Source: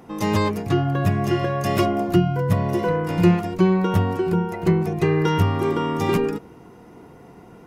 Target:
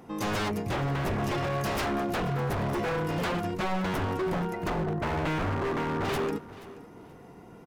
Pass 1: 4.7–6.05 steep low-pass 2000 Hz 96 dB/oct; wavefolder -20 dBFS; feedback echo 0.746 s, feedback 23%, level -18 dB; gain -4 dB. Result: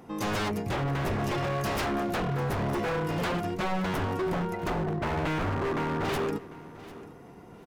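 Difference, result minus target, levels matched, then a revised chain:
echo 0.267 s late
4.7–6.05 steep low-pass 2000 Hz 96 dB/oct; wavefolder -20 dBFS; feedback echo 0.479 s, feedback 23%, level -18 dB; gain -4 dB

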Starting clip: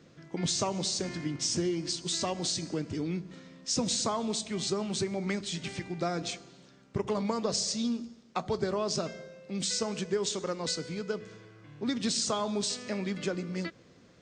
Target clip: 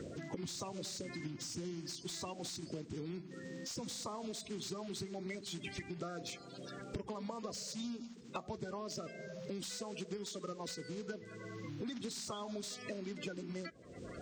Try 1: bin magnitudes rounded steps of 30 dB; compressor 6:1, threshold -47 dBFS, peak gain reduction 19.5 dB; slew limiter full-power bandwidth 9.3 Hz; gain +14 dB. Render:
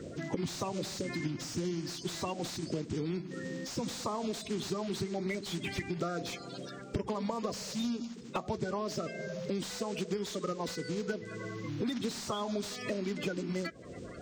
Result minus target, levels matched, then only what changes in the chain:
compressor: peak gain reduction -8.5 dB
change: compressor 6:1, threshold -57 dBFS, peak gain reduction 28 dB

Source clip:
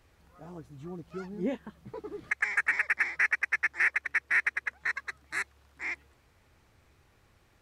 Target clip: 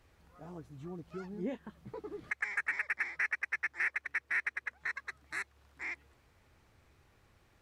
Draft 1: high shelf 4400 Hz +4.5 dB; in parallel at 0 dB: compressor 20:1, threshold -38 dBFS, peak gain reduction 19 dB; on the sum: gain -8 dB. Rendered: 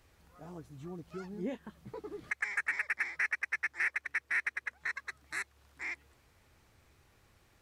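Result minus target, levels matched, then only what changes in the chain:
8000 Hz band +4.0 dB
change: high shelf 4400 Hz -2 dB

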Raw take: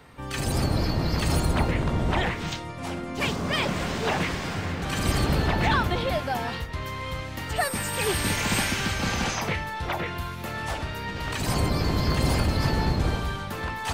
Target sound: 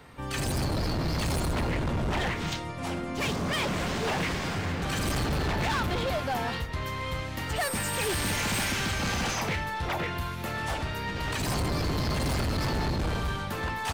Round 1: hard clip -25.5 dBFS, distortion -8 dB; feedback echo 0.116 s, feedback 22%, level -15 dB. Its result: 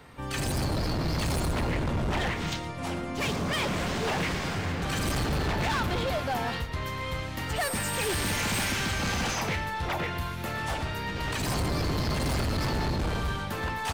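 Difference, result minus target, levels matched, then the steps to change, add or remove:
echo-to-direct +11.5 dB
change: feedback echo 0.116 s, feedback 22%, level -26.5 dB

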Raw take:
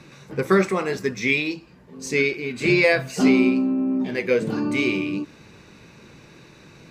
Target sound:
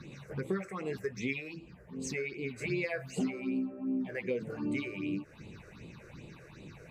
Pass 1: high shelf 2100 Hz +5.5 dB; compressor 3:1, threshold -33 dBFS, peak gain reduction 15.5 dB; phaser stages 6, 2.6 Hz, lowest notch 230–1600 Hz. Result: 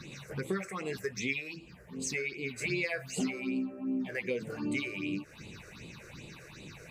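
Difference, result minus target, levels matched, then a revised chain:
4000 Hz band +5.0 dB
high shelf 2100 Hz -5.5 dB; compressor 3:1, threshold -33 dBFS, peak gain reduction 15 dB; phaser stages 6, 2.6 Hz, lowest notch 230–1600 Hz

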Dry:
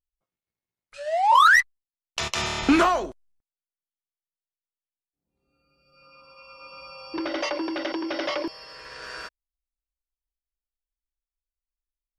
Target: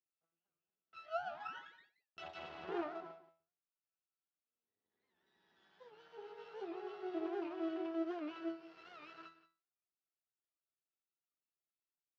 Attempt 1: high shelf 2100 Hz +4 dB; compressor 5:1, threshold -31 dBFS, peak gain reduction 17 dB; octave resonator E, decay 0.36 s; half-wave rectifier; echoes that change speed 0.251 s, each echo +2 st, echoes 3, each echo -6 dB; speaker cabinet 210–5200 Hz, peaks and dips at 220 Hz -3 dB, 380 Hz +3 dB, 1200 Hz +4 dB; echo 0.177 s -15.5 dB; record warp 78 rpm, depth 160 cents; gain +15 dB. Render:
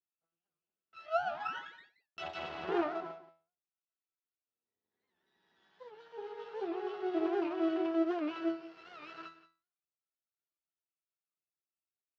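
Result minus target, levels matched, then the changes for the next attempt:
compressor: peak gain reduction -8 dB
change: compressor 5:1, threshold -41 dBFS, peak gain reduction 25 dB

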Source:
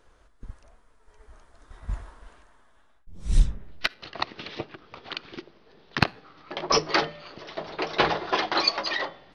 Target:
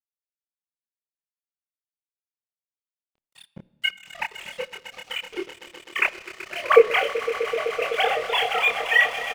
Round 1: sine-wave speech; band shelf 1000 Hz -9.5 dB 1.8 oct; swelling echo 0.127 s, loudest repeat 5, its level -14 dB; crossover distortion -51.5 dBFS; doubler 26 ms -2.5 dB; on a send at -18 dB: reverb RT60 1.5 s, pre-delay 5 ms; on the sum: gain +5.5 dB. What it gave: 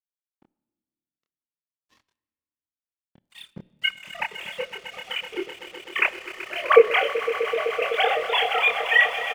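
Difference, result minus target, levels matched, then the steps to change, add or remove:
crossover distortion: distortion -6 dB
change: crossover distortion -44.5 dBFS

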